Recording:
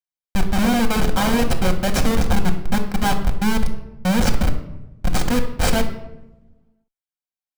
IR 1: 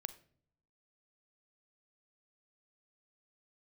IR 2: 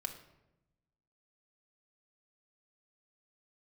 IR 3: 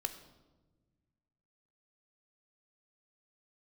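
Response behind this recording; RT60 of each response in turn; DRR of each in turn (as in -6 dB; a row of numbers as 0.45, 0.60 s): 2; not exponential, 0.95 s, 1.3 s; 13.0, 3.5, 8.5 dB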